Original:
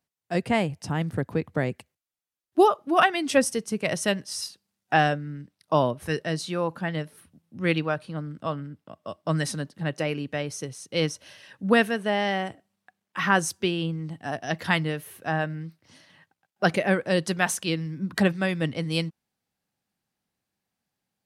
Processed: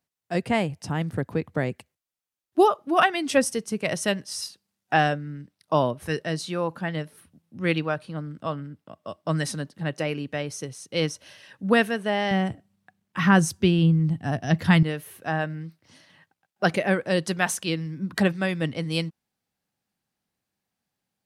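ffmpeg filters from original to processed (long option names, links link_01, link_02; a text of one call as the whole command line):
ffmpeg -i in.wav -filter_complex "[0:a]asettb=1/sr,asplit=3[link_01][link_02][link_03];[link_01]atrim=end=12.314[link_04];[link_02]atrim=start=12.31:end=14.83,asetpts=PTS-STARTPTS,afade=type=in:duration=0.004:curve=qsin,afade=type=out:start_time=2.516:duration=0.004:curve=qsin,bass=frequency=250:gain=14,treble=frequency=4000:gain=0[link_05];[link_03]atrim=start=14.826[link_06];[link_04][link_05]acrossfade=duration=0.004:curve1=hsin:curve2=qsin[link_07];[link_07][link_06]acrossfade=duration=0.004:curve1=qsin:curve2=hsin" out.wav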